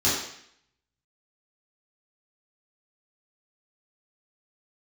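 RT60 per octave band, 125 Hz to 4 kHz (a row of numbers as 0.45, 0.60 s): 0.70, 0.70, 0.65, 0.70, 0.75, 0.70 s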